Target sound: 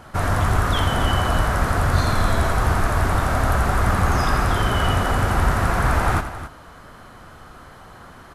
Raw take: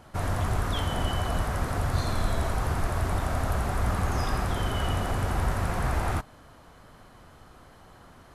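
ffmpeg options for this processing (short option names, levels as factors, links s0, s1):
-af "equalizer=f=1400:t=o:w=0.89:g=5,aecho=1:1:85|268:0.282|0.224,volume=2.24"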